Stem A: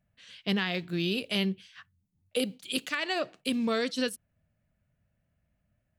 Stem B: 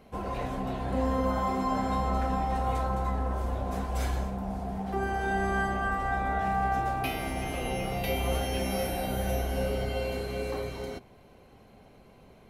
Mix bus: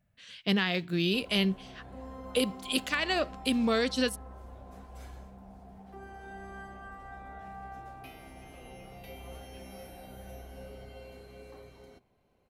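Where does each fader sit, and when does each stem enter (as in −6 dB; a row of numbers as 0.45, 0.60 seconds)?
+1.5, −16.5 decibels; 0.00, 1.00 seconds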